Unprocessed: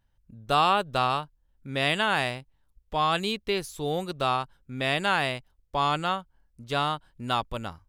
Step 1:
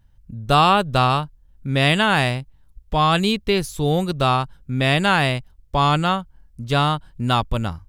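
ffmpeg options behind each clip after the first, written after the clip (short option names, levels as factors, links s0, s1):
-af "bass=f=250:g=9,treble=f=4000:g=1,volume=2.11"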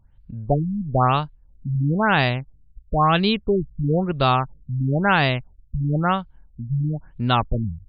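-af "afftfilt=real='re*lt(b*sr/1024,230*pow(5000/230,0.5+0.5*sin(2*PI*1*pts/sr)))':imag='im*lt(b*sr/1024,230*pow(5000/230,0.5+0.5*sin(2*PI*1*pts/sr)))':win_size=1024:overlap=0.75"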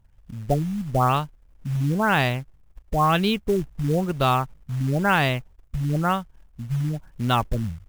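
-af "acrusher=bits=5:mode=log:mix=0:aa=0.000001,equalizer=f=4200:t=o:w=0.44:g=-3.5,volume=0.794"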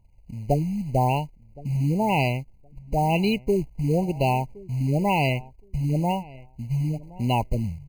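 -filter_complex "[0:a]asplit=2[s0][s1];[s1]adelay=1068,lowpass=f=1700:p=1,volume=0.0891,asplit=2[s2][s3];[s3]adelay=1068,lowpass=f=1700:p=1,volume=0.19[s4];[s0][s2][s4]amix=inputs=3:normalize=0,afftfilt=real='re*eq(mod(floor(b*sr/1024/1000),2),0)':imag='im*eq(mod(floor(b*sr/1024/1000),2),0)':win_size=1024:overlap=0.75"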